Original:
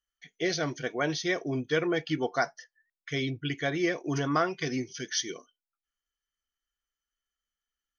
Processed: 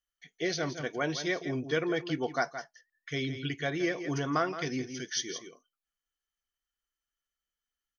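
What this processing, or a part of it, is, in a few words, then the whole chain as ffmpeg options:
ducked delay: -filter_complex "[0:a]asplit=3[a][b][c];[b]adelay=169,volume=-8dB[d];[c]apad=whole_len=359526[e];[d][e]sidechaincompress=threshold=-31dB:ratio=8:attack=10:release=254[f];[a][f]amix=inputs=2:normalize=0,volume=-2.5dB"

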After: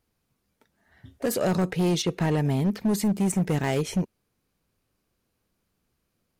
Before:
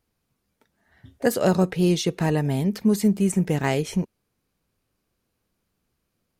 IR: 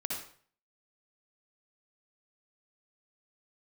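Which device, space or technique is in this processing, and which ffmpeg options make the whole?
limiter into clipper: -filter_complex "[0:a]asettb=1/sr,asplit=3[a][b][c];[a]atrim=end=2.024[d];[b]atrim=start=2.02:end=2.84,asetpts=PTS-STARTPTS,afade=t=in:d=0.004:c=qsin,afade=t=out:st=0.816:d=0.004:c=qsin,acrossover=split=4000[e][f];[f]acompressor=threshold=-45dB:ratio=4:attack=1:release=60[g];[e][g]amix=inputs=2:normalize=0[h];[c]atrim=start=2.836[i];[d][h]acrossfade=d=0.004:c1=hsin:c2=qsin[j];[j][i]acrossfade=d=0.004:c1=qsin:c2=hsin,alimiter=limit=-14dB:level=0:latency=1:release=26,asoftclip=type=hard:threshold=-19dB"

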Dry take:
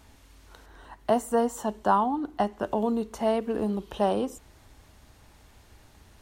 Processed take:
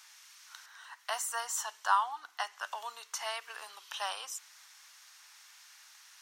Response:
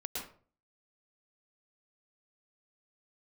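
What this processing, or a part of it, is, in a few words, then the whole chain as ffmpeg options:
headphones lying on a table: -af "highpass=f=1.2k:w=0.5412,highpass=f=1.2k:w=1.3066,equalizer=f=5.7k:t=o:w=0.58:g=7.5,volume=3.5dB"

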